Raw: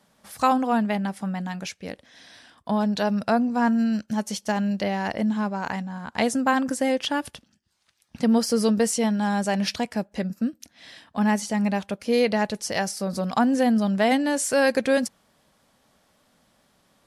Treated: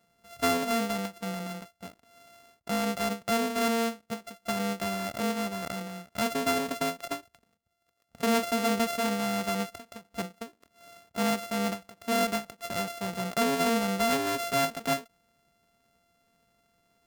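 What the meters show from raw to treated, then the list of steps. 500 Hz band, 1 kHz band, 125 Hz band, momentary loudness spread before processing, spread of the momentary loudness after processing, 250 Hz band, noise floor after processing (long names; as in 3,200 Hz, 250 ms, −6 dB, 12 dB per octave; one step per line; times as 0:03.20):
−5.5 dB, −4.5 dB, −7.5 dB, 10 LU, 13 LU, −9.0 dB, −74 dBFS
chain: samples sorted by size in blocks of 64 samples
every ending faded ahead of time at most 260 dB per second
level −6 dB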